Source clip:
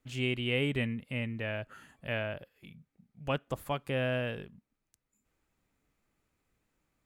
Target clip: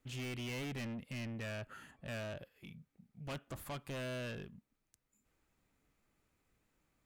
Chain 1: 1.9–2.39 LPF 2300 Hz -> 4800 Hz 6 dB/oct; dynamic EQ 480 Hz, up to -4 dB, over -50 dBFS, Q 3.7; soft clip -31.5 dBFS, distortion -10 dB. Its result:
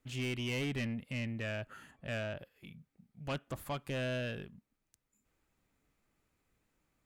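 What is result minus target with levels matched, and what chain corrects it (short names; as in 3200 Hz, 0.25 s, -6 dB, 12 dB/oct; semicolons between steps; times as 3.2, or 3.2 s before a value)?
soft clip: distortion -5 dB
1.9–2.39 LPF 2300 Hz -> 4800 Hz 6 dB/oct; dynamic EQ 480 Hz, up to -4 dB, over -50 dBFS, Q 3.7; soft clip -39.5 dBFS, distortion -5 dB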